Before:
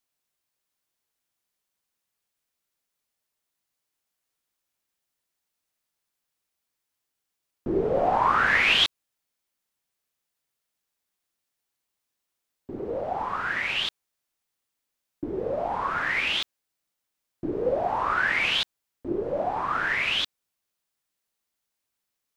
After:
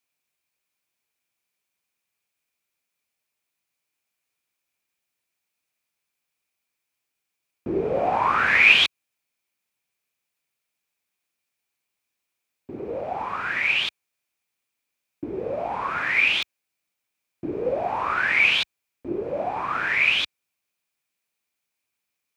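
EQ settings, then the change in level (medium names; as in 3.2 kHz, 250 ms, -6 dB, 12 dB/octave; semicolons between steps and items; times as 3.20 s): high-pass 61 Hz; peaking EQ 2.4 kHz +11.5 dB 0.25 oct; 0.0 dB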